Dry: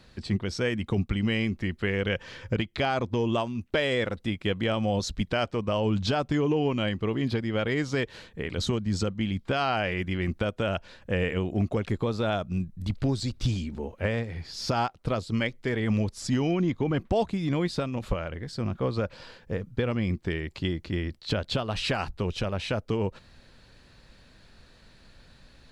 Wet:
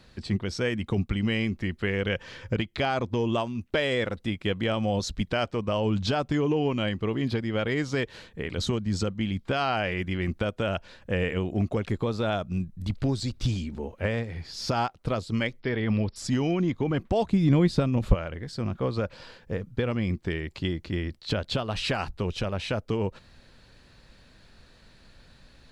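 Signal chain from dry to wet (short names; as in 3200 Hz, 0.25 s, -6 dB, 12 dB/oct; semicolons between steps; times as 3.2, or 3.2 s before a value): 15.6–16.16 brick-wall FIR low-pass 5600 Hz; 17.31–18.15 low shelf 350 Hz +9.5 dB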